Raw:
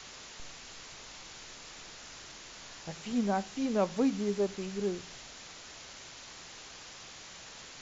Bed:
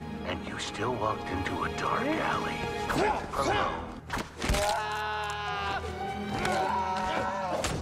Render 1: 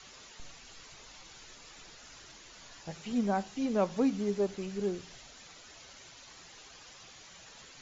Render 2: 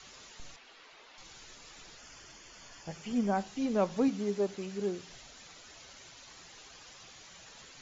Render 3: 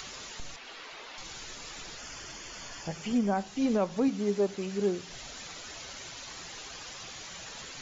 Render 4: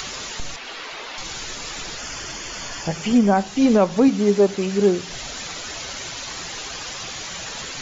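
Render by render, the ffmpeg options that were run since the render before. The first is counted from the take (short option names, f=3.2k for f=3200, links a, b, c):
-af "afftdn=nr=8:nf=-49"
-filter_complex "[0:a]asettb=1/sr,asplit=3[a][b][c];[a]atrim=end=0.564[d];[b]atrim=start=0.56:end=1.18,asetpts=PTS-STARTPTS,afade=t=in:d=0.004:c=qsin,afade=t=out:st=0.616:d=0.004:c=qsin,acrossover=split=270 4200:gain=0.0891 1 0.126[e][f][g];[e][f][g]amix=inputs=3:normalize=0[h];[c]atrim=start=1.176[i];[d][h]acrossfade=d=0.004:c1=hsin:c2=qsin[j];[j][i]acrossfade=d=0.004:c1=qsin:c2=hsin,asettb=1/sr,asplit=3[k][l][m];[k]atrim=end=1.984[n];[l]atrim=start=1.98:end=3.37,asetpts=PTS-STARTPTS,afade=t=in:d=0.004:c=qsin,afade=t=out:st=1.386:d=0.004:c=qsin,asuperstop=centerf=3900:order=4:qfactor=6.6[o];[m]atrim=start=3.366[p];[n][o]acrossfade=d=0.004:c1=hsin:c2=qsin[q];[q][p]acrossfade=d=0.004:c1=qsin:c2=hsin,asettb=1/sr,asplit=3[r][s][t];[r]atrim=end=4.084[u];[s]atrim=start=4.08:end=5.09,asetpts=PTS-STARTPTS,afade=t=in:d=0.004:c=qsin,afade=t=out:st=1.006:d=0.004:c=qsin,highpass=f=140:p=1[v];[t]atrim=start=5.086[w];[u][v]acrossfade=d=0.004:c1=hsin:c2=qsin[x];[x][w]acrossfade=d=0.004:c1=qsin:c2=hsin"
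-filter_complex "[0:a]asplit=2[a][b];[b]acompressor=mode=upward:threshold=-37dB:ratio=2.5,volume=-1.5dB[c];[a][c]amix=inputs=2:normalize=0,alimiter=limit=-18.5dB:level=0:latency=1:release=363"
-af "volume=11.5dB"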